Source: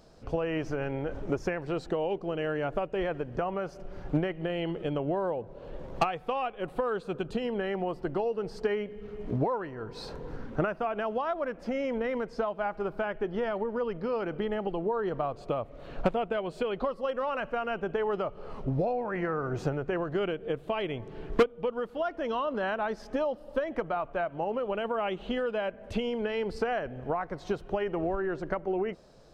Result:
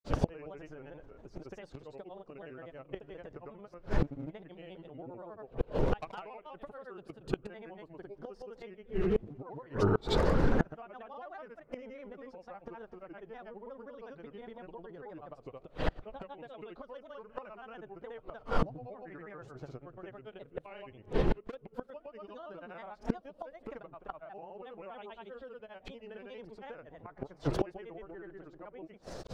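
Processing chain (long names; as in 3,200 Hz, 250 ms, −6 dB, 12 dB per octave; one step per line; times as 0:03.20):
granular cloud 84 ms, grains 25 per second, spray 160 ms, pitch spread up and down by 3 semitones
gate with flip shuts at −30 dBFS, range −30 dB
level +15 dB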